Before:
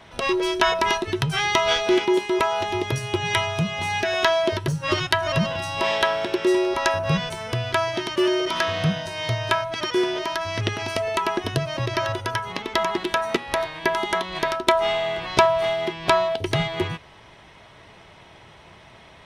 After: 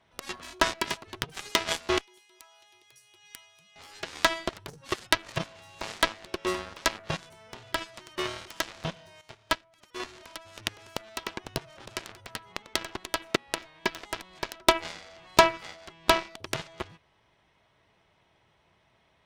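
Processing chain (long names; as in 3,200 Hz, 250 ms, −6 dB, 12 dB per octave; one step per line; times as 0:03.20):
0:02.01–0:03.76: first-order pre-emphasis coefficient 0.97
harmonic generator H 5 −18 dB, 7 −12 dB, 8 −43 dB, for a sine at −1 dBFS
0:09.21–0:10.00: expander for the loud parts 1.5 to 1, over −45 dBFS
level −1 dB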